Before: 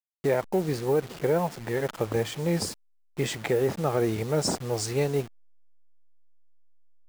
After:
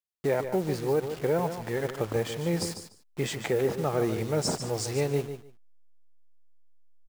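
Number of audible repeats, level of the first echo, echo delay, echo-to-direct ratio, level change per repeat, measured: 2, −9.5 dB, 147 ms, −9.5 dB, −15.5 dB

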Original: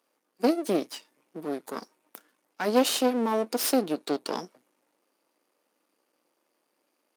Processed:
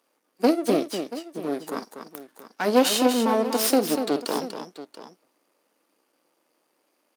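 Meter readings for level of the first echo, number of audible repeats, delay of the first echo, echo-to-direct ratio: −17.0 dB, 3, 49 ms, −7.0 dB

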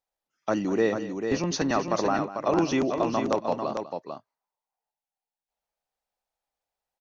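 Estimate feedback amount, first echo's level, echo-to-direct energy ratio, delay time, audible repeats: repeats not evenly spaced, −15.0 dB, −6.0 dB, 197 ms, 2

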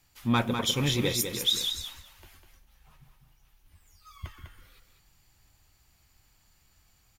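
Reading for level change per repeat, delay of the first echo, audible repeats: −16.5 dB, 200 ms, 2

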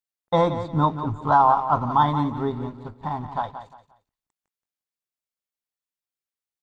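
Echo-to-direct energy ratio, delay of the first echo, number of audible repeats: −10.5 dB, 176 ms, 3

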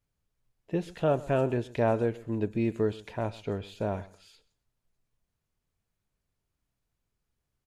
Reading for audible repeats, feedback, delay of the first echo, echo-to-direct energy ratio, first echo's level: 2, 19%, 128 ms, −20.0 dB, −20.0 dB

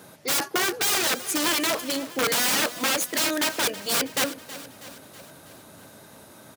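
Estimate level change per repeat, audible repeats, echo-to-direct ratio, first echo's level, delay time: −5.0 dB, 4, −14.0 dB, −15.5 dB, 322 ms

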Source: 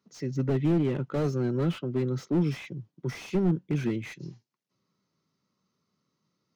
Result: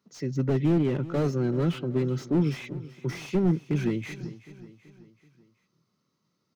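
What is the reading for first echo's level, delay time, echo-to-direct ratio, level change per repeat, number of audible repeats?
−17.0 dB, 381 ms, −15.5 dB, −6.0 dB, 4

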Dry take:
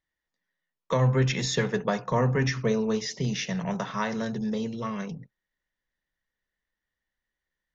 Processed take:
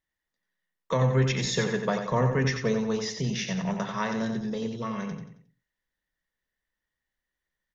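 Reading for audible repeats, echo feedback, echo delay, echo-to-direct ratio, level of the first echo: 4, 38%, 90 ms, −6.5 dB, −7.0 dB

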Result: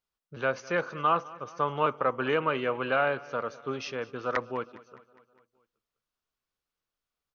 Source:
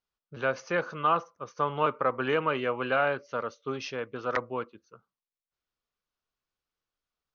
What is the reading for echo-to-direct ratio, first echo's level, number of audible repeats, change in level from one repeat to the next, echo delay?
−18.5 dB, −20.5 dB, 4, −4.5 dB, 205 ms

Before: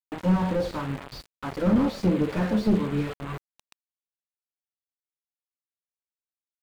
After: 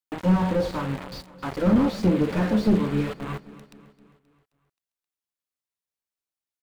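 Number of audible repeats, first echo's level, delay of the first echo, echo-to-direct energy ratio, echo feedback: 4, −18.5 dB, 264 ms, −17.0 dB, 54%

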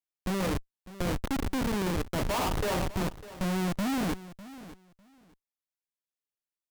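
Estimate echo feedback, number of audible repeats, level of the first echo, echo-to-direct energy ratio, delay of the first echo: 18%, 2, −16.5 dB, −16.5 dB, 601 ms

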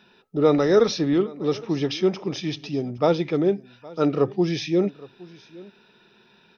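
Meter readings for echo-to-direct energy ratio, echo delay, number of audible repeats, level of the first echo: −21.5 dB, 815 ms, 1, −21.5 dB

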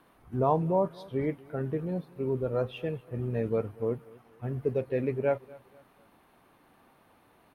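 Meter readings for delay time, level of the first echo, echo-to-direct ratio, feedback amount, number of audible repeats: 241 ms, −22.5 dB, −22.0 dB, 37%, 2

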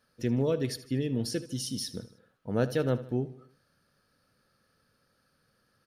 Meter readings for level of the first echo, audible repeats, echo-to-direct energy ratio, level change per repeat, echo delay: −16.0 dB, 4, −15.0 dB, −6.0 dB, 77 ms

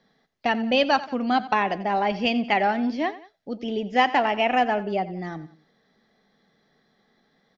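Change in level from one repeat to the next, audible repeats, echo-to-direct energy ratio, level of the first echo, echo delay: −7.0 dB, 2, −15.5 dB, −16.5 dB, 89 ms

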